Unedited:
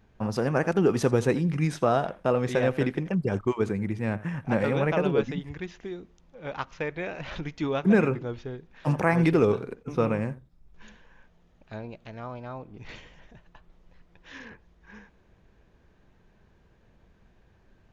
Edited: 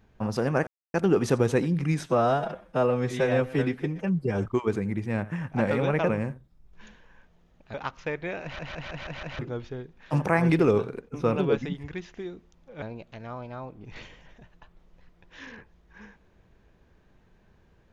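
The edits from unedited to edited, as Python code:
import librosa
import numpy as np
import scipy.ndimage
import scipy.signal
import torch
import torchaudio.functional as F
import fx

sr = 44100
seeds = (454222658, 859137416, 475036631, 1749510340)

y = fx.edit(x, sr, fx.insert_silence(at_s=0.67, length_s=0.27),
    fx.stretch_span(start_s=1.79, length_s=1.6, factor=1.5),
    fx.swap(start_s=5.02, length_s=1.46, other_s=10.1, other_length_s=1.65),
    fx.stutter_over(start_s=7.17, slice_s=0.16, count=6), tone=tone)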